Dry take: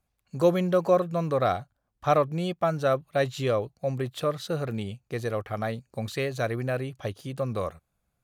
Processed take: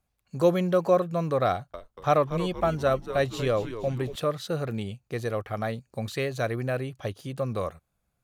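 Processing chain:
0:01.50–0:04.16: echo with shifted repeats 235 ms, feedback 48%, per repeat −120 Hz, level −11.5 dB

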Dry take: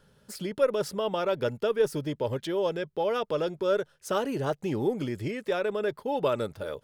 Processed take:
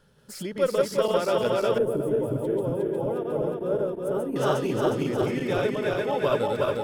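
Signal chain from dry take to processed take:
feedback delay that plays each chunk backwards 180 ms, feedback 79%, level −1 dB
0:01.78–0:04.36: drawn EQ curve 350 Hz 0 dB, 5,800 Hz −25 dB, 9,100 Hz −6 dB

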